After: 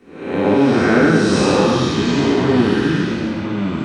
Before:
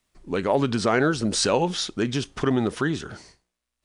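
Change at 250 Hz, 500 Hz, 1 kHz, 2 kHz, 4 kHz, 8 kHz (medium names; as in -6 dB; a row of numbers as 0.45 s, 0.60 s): +11.5 dB, +8.5 dB, +6.5 dB, +9.0 dB, +4.5 dB, 0.0 dB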